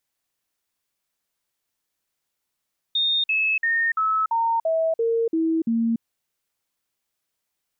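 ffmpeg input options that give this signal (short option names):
-f lavfi -i "aevalsrc='0.119*clip(min(mod(t,0.34),0.29-mod(t,0.34))/0.005,0,1)*sin(2*PI*3670*pow(2,-floor(t/0.34)/2)*mod(t,0.34))':d=3.06:s=44100"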